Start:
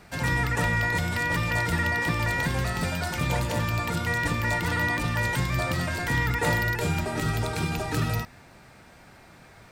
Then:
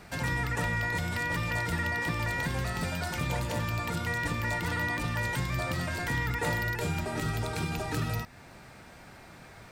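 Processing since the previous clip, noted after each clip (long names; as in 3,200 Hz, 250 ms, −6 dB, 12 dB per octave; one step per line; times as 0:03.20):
downward compressor 1.5 to 1, threshold −39 dBFS, peak gain reduction 7 dB
level +1 dB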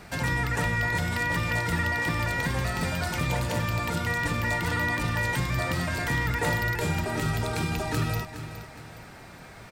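repeating echo 415 ms, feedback 38%, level −12 dB
level +3.5 dB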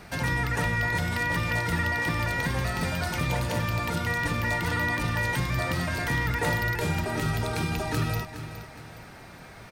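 notch filter 7,500 Hz, Q 9.5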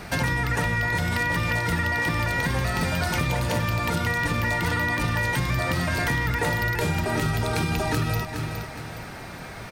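downward compressor, threshold −29 dBFS, peak gain reduction 7.5 dB
level +8 dB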